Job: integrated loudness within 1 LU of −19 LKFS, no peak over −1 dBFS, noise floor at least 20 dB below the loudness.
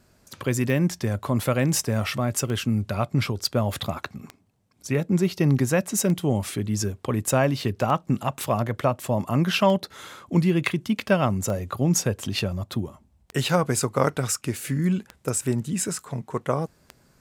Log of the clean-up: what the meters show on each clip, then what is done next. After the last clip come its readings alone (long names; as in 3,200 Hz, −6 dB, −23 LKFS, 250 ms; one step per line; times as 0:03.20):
number of clicks 10; integrated loudness −25.0 LKFS; sample peak −5.0 dBFS; target loudness −19.0 LKFS
→ click removal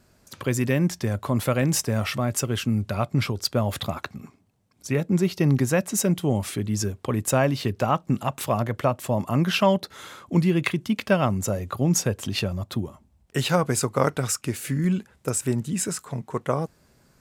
number of clicks 0; integrated loudness −25.0 LKFS; sample peak −5.0 dBFS; target loudness −19.0 LKFS
→ level +6 dB
brickwall limiter −1 dBFS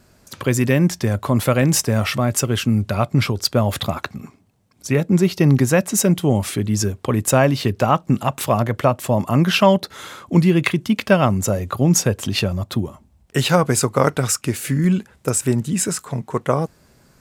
integrated loudness −19.0 LKFS; sample peak −1.0 dBFS; background noise floor −55 dBFS